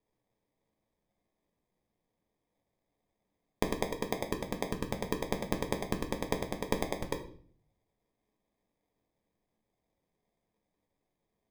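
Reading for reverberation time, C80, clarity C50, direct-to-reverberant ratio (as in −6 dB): 0.50 s, 14.0 dB, 10.5 dB, 3.5 dB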